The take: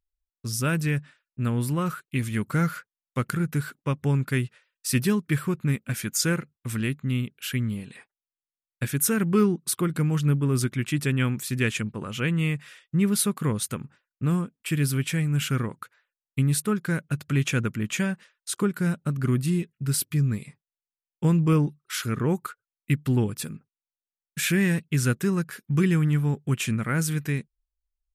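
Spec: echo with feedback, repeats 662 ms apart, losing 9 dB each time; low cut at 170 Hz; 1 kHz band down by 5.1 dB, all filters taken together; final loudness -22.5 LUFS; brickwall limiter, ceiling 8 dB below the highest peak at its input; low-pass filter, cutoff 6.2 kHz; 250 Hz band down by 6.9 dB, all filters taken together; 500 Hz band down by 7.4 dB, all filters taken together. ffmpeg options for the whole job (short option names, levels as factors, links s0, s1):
-af "highpass=170,lowpass=6200,equalizer=f=250:t=o:g=-6,equalizer=f=500:t=o:g=-6,equalizer=f=1000:t=o:g=-6,alimiter=limit=0.0841:level=0:latency=1,aecho=1:1:662|1324|1986|2648:0.355|0.124|0.0435|0.0152,volume=3.35"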